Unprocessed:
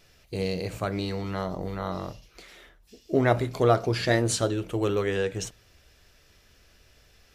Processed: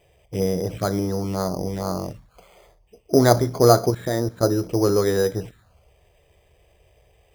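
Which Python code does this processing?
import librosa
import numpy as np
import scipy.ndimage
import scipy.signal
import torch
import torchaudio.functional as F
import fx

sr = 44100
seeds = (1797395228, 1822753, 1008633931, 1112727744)

y = fx.highpass(x, sr, hz=77.0, slope=6)
y = fx.high_shelf(y, sr, hz=4500.0, db=-7.0)
y = fx.env_phaser(y, sr, low_hz=230.0, high_hz=3000.0, full_db=-26.0)
y = fx.level_steps(y, sr, step_db=15, at=(3.9, 4.43))
y = np.repeat(scipy.signal.resample_poly(y, 1, 8), 8)[:len(y)]
y = y * 10.0 ** (7.5 / 20.0)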